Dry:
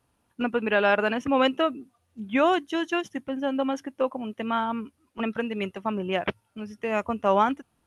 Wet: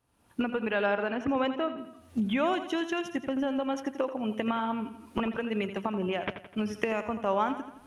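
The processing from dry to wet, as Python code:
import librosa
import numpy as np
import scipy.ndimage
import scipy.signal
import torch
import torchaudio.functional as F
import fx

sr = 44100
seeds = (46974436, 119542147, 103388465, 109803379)

y = fx.recorder_agc(x, sr, target_db=-15.5, rise_db_per_s=47.0, max_gain_db=30)
y = fx.lowpass(y, sr, hz=2200.0, slope=6, at=(0.86, 1.78))
y = fx.echo_feedback(y, sr, ms=84, feedback_pct=51, wet_db=-11)
y = y * 10.0 ** (-6.5 / 20.0)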